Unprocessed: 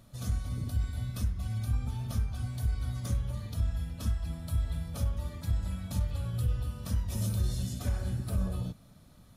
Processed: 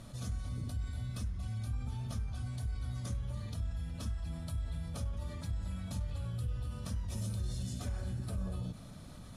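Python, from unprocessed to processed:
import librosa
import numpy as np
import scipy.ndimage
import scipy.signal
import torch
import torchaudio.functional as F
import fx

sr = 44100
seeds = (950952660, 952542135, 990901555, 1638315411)

y = scipy.signal.sosfilt(scipy.signal.butter(4, 11000.0, 'lowpass', fs=sr, output='sos'), x)
y = fx.env_flatten(y, sr, amount_pct=50)
y = y * librosa.db_to_amplitude(-8.5)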